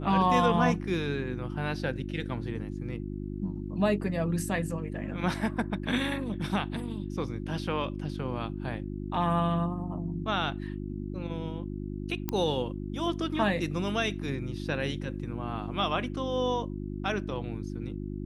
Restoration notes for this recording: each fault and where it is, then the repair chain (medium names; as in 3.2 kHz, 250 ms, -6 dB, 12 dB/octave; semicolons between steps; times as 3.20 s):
hum 50 Hz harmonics 7 -36 dBFS
12.29 s: pop -15 dBFS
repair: de-click; de-hum 50 Hz, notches 7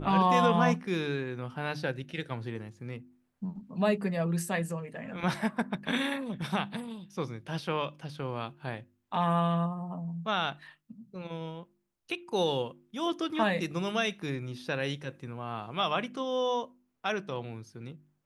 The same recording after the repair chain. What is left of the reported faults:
nothing left